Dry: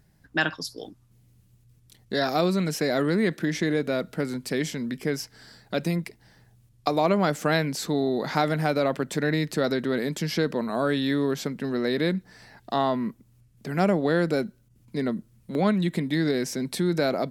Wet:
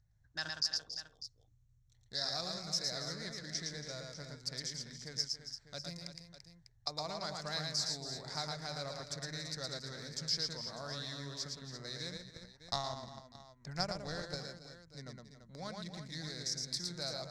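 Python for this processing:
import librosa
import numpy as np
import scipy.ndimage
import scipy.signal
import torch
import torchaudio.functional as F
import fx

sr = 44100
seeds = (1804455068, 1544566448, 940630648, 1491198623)

y = fx.wiener(x, sr, points=9)
y = fx.echo_multitap(y, sr, ms=(113, 279, 339, 598), db=(-3.5, -12.5, -10.5, -13.5))
y = fx.transient(y, sr, attack_db=10, sustain_db=-6, at=(12.15, 14.36), fade=0.02)
y = fx.curve_eq(y, sr, hz=(110.0, 210.0, 380.0, 550.0, 920.0, 1900.0, 2900.0, 5000.0, 12000.0), db=(0, -20, -22, -13, -11, -9, -14, 14, -12))
y = y * librosa.db_to_amplitude(-8.0)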